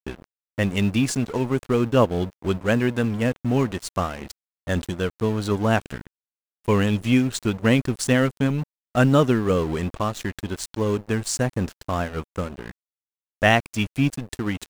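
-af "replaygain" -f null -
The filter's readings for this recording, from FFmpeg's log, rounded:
track_gain = +3.3 dB
track_peak = 0.482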